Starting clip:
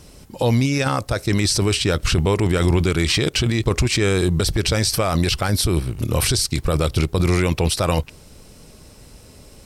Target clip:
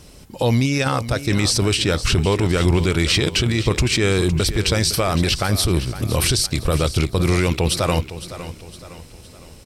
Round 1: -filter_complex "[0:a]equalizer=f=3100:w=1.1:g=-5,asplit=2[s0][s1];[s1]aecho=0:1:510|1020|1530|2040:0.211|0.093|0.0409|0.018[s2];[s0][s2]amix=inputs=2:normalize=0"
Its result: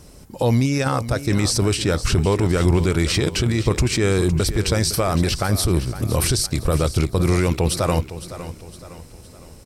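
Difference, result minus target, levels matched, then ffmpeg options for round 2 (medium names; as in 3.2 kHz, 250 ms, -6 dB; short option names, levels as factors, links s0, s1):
4 kHz band -4.0 dB
-filter_complex "[0:a]equalizer=f=3100:w=1.1:g=2,asplit=2[s0][s1];[s1]aecho=0:1:510|1020|1530|2040:0.211|0.093|0.0409|0.018[s2];[s0][s2]amix=inputs=2:normalize=0"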